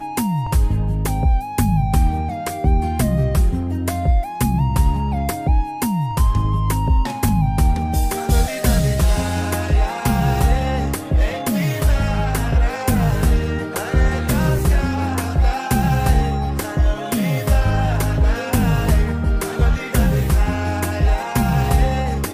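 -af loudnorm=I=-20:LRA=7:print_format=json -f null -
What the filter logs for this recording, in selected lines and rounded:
"input_i" : "-19.3",
"input_tp" : "-3.6",
"input_lra" : "0.7",
"input_thresh" : "-29.3",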